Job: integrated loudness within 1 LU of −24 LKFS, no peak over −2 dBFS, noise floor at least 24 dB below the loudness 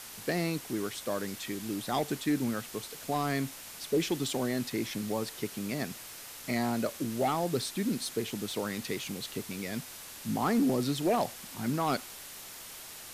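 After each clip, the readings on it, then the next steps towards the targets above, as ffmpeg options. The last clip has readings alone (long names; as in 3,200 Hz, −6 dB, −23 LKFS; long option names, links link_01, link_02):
background noise floor −46 dBFS; target noise floor −57 dBFS; integrated loudness −33.0 LKFS; sample peak −18.5 dBFS; target loudness −24.0 LKFS
→ -af "afftdn=noise_reduction=11:noise_floor=-46"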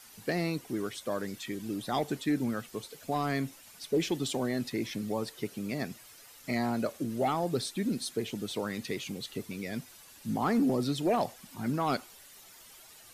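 background noise floor −54 dBFS; target noise floor −57 dBFS
→ -af "afftdn=noise_reduction=6:noise_floor=-54"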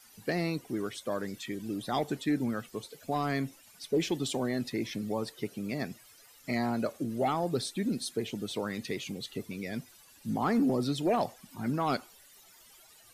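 background noise floor −58 dBFS; integrated loudness −33.0 LKFS; sample peak −19.0 dBFS; target loudness −24.0 LKFS
→ -af "volume=9dB"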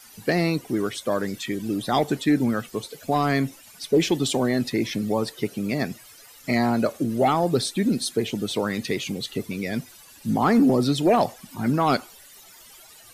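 integrated loudness −24.0 LKFS; sample peak −10.0 dBFS; background noise floor −49 dBFS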